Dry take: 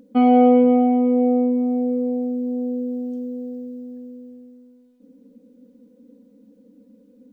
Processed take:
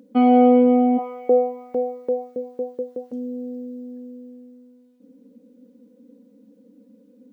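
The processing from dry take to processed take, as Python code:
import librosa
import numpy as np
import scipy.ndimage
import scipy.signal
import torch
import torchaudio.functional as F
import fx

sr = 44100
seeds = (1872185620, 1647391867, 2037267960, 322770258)

y = scipy.signal.sosfilt(scipy.signal.butter(2, 150.0, 'highpass', fs=sr, output='sos'), x)
y = fx.filter_lfo_highpass(y, sr, shape='saw_up', hz=fx.line((0.97, 1.5), (3.11, 6.8)), low_hz=430.0, high_hz=1700.0, q=2.8, at=(0.97, 3.11), fade=0.02)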